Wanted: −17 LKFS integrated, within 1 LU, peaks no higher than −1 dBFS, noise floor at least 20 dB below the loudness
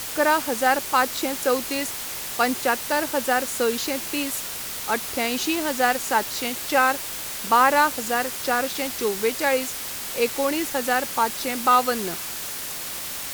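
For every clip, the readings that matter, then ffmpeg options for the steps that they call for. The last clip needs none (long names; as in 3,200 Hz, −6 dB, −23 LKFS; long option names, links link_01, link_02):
background noise floor −32 dBFS; target noise floor −43 dBFS; integrated loudness −23.0 LKFS; sample peak −5.0 dBFS; target loudness −17.0 LKFS
→ -af "afftdn=noise_reduction=11:noise_floor=-32"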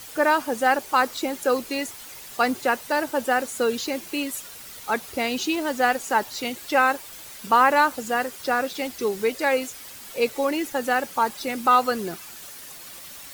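background noise floor −41 dBFS; target noise floor −44 dBFS
→ -af "afftdn=noise_reduction=6:noise_floor=-41"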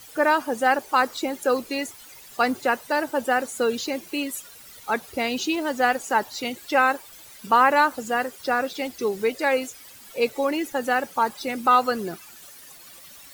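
background noise floor −46 dBFS; integrated loudness −23.5 LKFS; sample peak −5.5 dBFS; target loudness −17.0 LKFS
→ -af "volume=6.5dB,alimiter=limit=-1dB:level=0:latency=1"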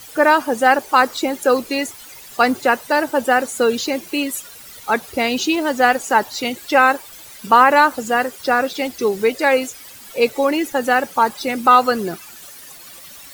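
integrated loudness −17.5 LKFS; sample peak −1.0 dBFS; background noise floor −40 dBFS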